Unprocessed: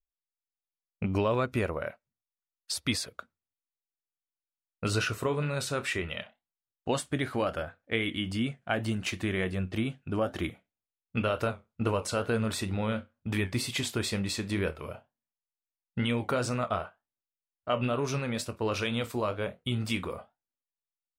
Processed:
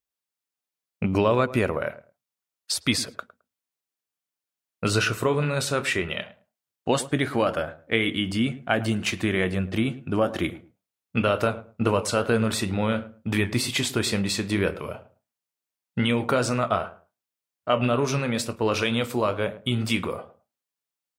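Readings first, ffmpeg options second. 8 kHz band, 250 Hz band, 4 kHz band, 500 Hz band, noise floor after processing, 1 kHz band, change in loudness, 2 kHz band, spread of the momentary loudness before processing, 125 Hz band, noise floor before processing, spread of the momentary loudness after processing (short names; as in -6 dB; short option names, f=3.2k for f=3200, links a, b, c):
+6.5 dB, +6.5 dB, +6.5 dB, +6.5 dB, under -85 dBFS, +6.5 dB, +6.5 dB, +6.5 dB, 8 LU, +4.5 dB, under -85 dBFS, 8 LU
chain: -filter_complex "[0:a]highpass=100,asplit=2[a][b];[b]adelay=107,lowpass=f=990:p=1,volume=-14.5dB,asplit=2[c][d];[d]adelay=107,lowpass=f=990:p=1,volume=0.22[e];[a][c][e]amix=inputs=3:normalize=0,volume=6.5dB"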